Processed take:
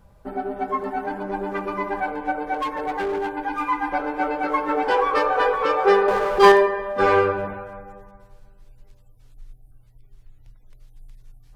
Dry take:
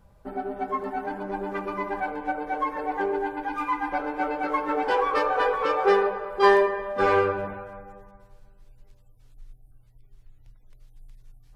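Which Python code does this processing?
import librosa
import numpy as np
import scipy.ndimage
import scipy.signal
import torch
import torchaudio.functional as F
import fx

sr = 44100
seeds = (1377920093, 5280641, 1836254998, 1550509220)

y = fx.overload_stage(x, sr, gain_db=25.0, at=(2.54, 3.3))
y = fx.power_curve(y, sr, exponent=0.7, at=(6.08, 6.52))
y = F.gain(torch.from_numpy(y), 3.5).numpy()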